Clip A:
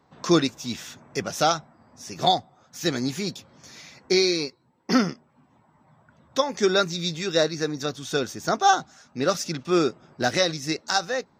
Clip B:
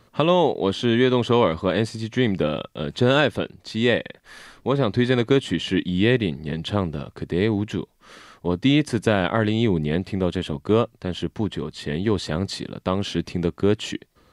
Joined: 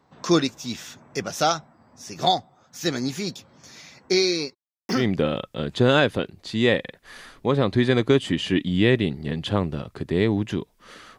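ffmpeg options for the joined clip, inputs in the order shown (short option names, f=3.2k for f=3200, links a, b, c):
-filter_complex "[0:a]asplit=3[a][b][c];[a]afade=t=out:st=4.53:d=0.02[d];[b]aeval=exprs='val(0)*gte(abs(val(0)),0.0168)':c=same,afade=t=in:st=4.53:d=0.02,afade=t=out:st=5.07:d=0.02[e];[c]afade=t=in:st=5.07:d=0.02[f];[d][e][f]amix=inputs=3:normalize=0,apad=whole_dur=11.18,atrim=end=11.18,atrim=end=5.07,asetpts=PTS-STARTPTS[g];[1:a]atrim=start=2.1:end=8.39,asetpts=PTS-STARTPTS[h];[g][h]acrossfade=d=0.18:c1=tri:c2=tri"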